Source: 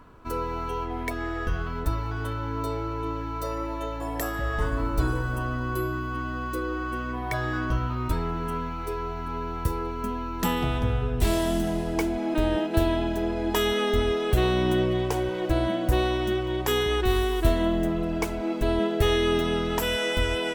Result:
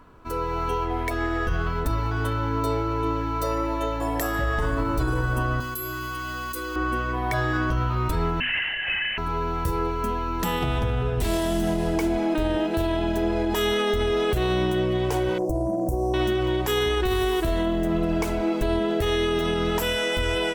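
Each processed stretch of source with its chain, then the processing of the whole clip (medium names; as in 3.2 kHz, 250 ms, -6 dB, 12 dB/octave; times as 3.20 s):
5.60–6.76 s: pre-emphasis filter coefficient 0.9 + level flattener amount 100%
8.40–9.18 s: peaking EQ 79 Hz -12 dB 1.6 oct + frequency inversion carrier 3 kHz + LPC vocoder at 8 kHz whisper
15.38–16.14 s: inverse Chebyshev band-stop 1.4–3.9 kHz + compression 5:1, threshold -26 dBFS
whole clip: hum notches 50/100/150/200/250 Hz; level rider gain up to 5.5 dB; peak limiter -15.5 dBFS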